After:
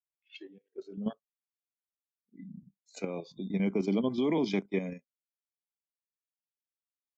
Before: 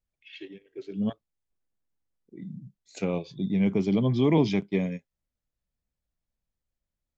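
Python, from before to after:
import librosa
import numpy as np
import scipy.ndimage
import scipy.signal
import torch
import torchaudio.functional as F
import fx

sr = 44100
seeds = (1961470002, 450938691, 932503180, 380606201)

y = fx.noise_reduce_blind(x, sr, reduce_db=18)
y = scipy.signal.sosfilt(scipy.signal.butter(4, 200.0, 'highpass', fs=sr, output='sos'), y)
y = fx.level_steps(y, sr, step_db=9)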